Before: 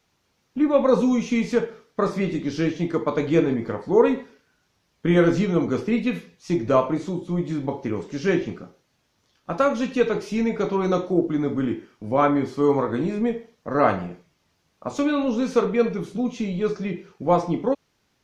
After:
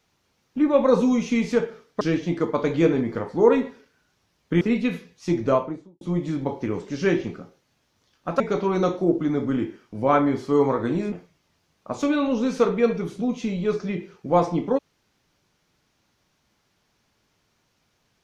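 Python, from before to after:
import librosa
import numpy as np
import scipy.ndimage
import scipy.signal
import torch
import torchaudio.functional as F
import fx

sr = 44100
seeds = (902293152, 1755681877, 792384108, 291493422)

y = fx.studio_fade_out(x, sr, start_s=6.59, length_s=0.64)
y = fx.edit(y, sr, fx.cut(start_s=2.01, length_s=0.53),
    fx.cut(start_s=5.14, length_s=0.69),
    fx.cut(start_s=9.62, length_s=0.87),
    fx.cut(start_s=13.21, length_s=0.87), tone=tone)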